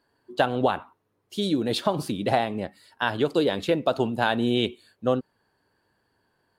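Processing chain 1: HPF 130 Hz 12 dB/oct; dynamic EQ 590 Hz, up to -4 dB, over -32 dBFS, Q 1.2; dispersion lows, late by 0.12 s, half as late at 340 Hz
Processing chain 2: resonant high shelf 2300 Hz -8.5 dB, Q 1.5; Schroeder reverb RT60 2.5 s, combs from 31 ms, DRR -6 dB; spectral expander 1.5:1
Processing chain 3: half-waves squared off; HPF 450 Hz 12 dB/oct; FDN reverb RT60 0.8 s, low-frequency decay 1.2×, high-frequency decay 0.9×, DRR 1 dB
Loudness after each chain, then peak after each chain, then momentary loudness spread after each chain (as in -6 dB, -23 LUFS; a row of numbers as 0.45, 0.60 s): -28.0, -20.0, -21.0 LUFS; -10.5, -4.5, -1.0 dBFS; 11, 11, 14 LU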